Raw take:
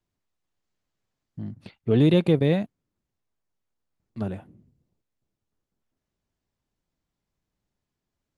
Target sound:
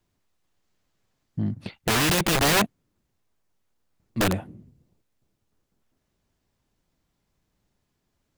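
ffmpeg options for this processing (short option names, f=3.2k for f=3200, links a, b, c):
-af "aeval=exprs='0.376*(cos(1*acos(clip(val(0)/0.376,-1,1)))-cos(1*PI/2))+0.119*(cos(5*acos(clip(val(0)/0.376,-1,1)))-cos(5*PI/2))':c=same,aeval=exprs='(mod(6.68*val(0)+1,2)-1)/6.68':c=same"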